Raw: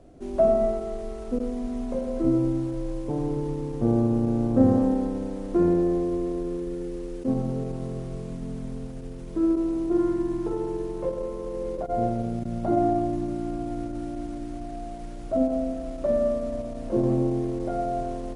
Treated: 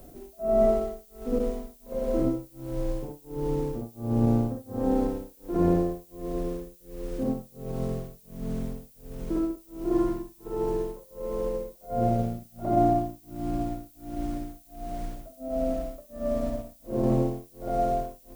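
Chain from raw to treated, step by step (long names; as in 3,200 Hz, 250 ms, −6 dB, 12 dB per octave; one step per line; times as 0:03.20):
backwards echo 59 ms −5.5 dB
amplitude tremolo 1.4 Hz, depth 99%
background noise violet −59 dBFS
level +2 dB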